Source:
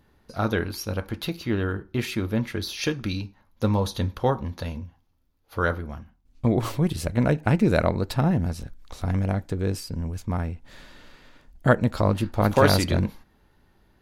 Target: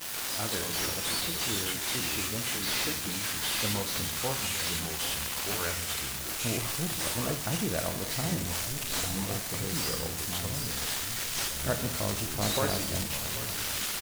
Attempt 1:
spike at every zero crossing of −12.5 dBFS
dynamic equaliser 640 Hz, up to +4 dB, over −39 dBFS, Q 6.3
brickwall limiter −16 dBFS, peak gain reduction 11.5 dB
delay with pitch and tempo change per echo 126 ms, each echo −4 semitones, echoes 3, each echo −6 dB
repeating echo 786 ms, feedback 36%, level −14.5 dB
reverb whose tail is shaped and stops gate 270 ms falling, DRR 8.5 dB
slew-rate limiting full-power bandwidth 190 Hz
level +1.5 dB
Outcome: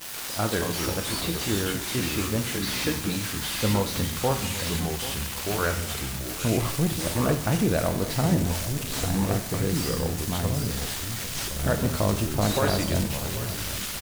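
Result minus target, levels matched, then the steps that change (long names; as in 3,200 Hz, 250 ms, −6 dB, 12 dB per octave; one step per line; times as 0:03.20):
spike at every zero crossing: distortion −10 dB
change: spike at every zero crossing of −2 dBFS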